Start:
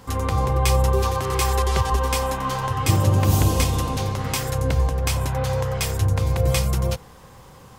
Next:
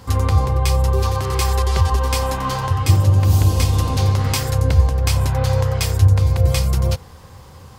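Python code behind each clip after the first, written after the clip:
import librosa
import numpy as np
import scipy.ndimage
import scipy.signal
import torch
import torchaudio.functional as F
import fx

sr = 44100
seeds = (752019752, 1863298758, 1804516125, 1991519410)

y = fx.peak_eq(x, sr, hz=4600.0, db=4.5, octaves=0.44)
y = fx.rider(y, sr, range_db=10, speed_s=0.5)
y = fx.peak_eq(y, sr, hz=85.0, db=14.5, octaves=0.46)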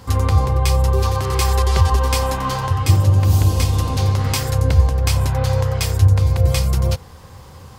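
y = fx.rider(x, sr, range_db=10, speed_s=2.0)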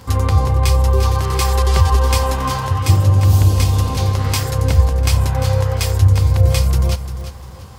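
y = fx.dmg_crackle(x, sr, seeds[0], per_s=16.0, level_db=-29.0)
y = fx.echo_feedback(y, sr, ms=348, feedback_pct=30, wet_db=-11.0)
y = y * 10.0 ** (1.0 / 20.0)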